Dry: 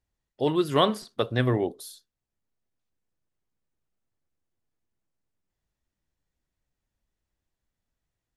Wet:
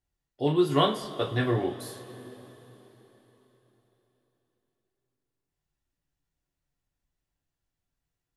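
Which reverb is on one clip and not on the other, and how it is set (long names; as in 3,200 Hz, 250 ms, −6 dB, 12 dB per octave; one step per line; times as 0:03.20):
coupled-rooms reverb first 0.25 s, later 4.1 s, from −21 dB, DRR −1 dB
level −5 dB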